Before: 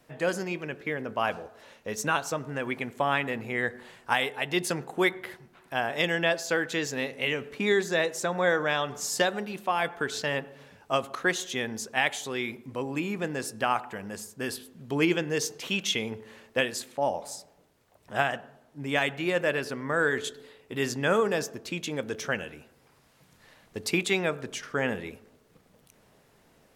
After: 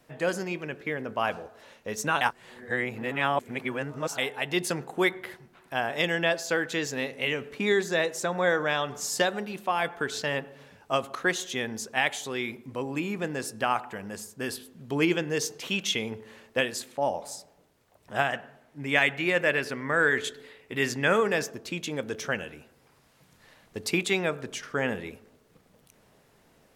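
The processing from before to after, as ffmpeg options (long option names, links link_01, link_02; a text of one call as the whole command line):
ffmpeg -i in.wav -filter_complex "[0:a]asettb=1/sr,asplit=3[link_01][link_02][link_03];[link_01]atrim=end=18.324[link_04];[link_02]atrim=start=18.32:end=21.51,asetpts=PTS-STARTPTS,afade=type=in:duration=0.004:curve=qsin,afade=type=out:start_time=3.186:duration=0.004:curve=qsin,equalizer=frequency=2100:width_type=o:width=0.8:gain=7[link_05];[link_03]atrim=start=21.506[link_06];[link_04][link_05]acrossfade=duration=0.004:curve1=hsin:curve2=qsin[link_07];[link_07][link_06]acrossfade=duration=0.004:curve1=qsin:curve2=hsin,asplit=3[link_08][link_09][link_10];[link_08]atrim=end=2.212[link_11];[link_09]atrim=start=2.208:end=4.182,asetpts=PTS-STARTPTS,areverse[link_12];[link_10]atrim=start=4.178[link_13];[link_11][link_12]acrossfade=duration=0.004:curve1=hsin:curve2=hsin[link_14];[link_14][link_13]acrossfade=duration=0.004:curve1=hsin:curve2=hsin" out.wav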